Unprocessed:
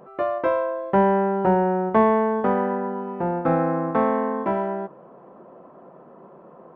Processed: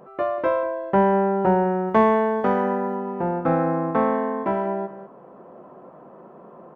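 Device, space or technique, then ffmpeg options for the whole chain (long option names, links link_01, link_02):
ducked delay: -filter_complex "[0:a]asplit=3[link_01][link_02][link_03];[link_01]afade=type=out:start_time=1.87:duration=0.02[link_04];[link_02]aemphasis=mode=production:type=75kf,afade=type=in:start_time=1.87:duration=0.02,afade=type=out:start_time=2.95:duration=0.02[link_05];[link_03]afade=type=in:start_time=2.95:duration=0.02[link_06];[link_04][link_05][link_06]amix=inputs=3:normalize=0,asplit=3[link_07][link_08][link_09];[link_08]adelay=194,volume=-3dB[link_10];[link_09]apad=whole_len=306655[link_11];[link_10][link_11]sidechaincompress=threshold=-33dB:ratio=8:attack=16:release=842[link_12];[link_07][link_12]amix=inputs=2:normalize=0"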